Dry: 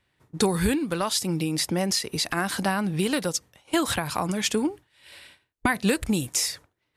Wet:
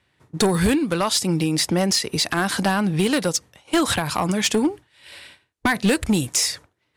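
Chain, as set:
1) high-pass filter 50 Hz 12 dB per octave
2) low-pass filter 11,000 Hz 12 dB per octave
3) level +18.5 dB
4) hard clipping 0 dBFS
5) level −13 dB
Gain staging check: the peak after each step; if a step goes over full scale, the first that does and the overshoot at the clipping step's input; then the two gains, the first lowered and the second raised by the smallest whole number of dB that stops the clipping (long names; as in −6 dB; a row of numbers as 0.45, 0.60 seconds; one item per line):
−10.0, −10.0, +8.5, 0.0, −13.0 dBFS
step 3, 8.5 dB
step 3 +9.5 dB, step 5 −4 dB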